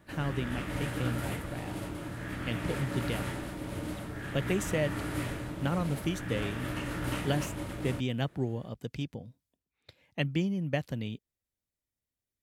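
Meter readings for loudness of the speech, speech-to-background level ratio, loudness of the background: -35.0 LUFS, 2.0 dB, -37.0 LUFS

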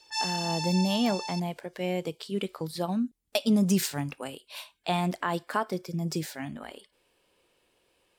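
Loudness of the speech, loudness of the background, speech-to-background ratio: -30.0 LUFS, -32.5 LUFS, 2.5 dB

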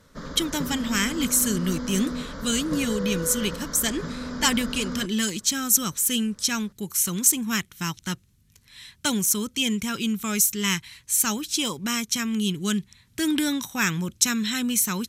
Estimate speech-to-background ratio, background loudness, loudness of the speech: 9.5 dB, -33.5 LUFS, -24.0 LUFS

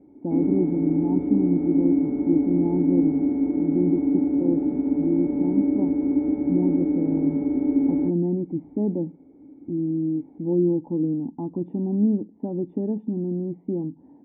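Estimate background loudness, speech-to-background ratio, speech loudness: -23.0 LUFS, -4.0 dB, -27.0 LUFS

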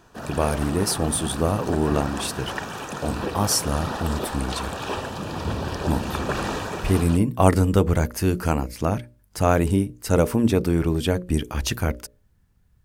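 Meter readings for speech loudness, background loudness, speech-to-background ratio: -23.5 LUFS, -30.5 LUFS, 7.0 dB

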